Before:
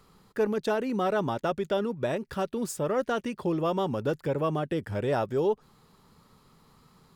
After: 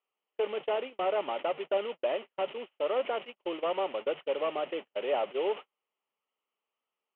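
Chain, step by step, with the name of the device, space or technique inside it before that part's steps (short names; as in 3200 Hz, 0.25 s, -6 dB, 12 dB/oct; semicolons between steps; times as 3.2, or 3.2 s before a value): digital answering machine (BPF 320–3300 Hz; delta modulation 16 kbps, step -35 dBFS; speaker cabinet 460–3600 Hz, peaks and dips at 580 Hz +3 dB, 1000 Hz -3 dB, 1600 Hz -10 dB, 3000 Hz +9 dB); gate -36 dBFS, range -47 dB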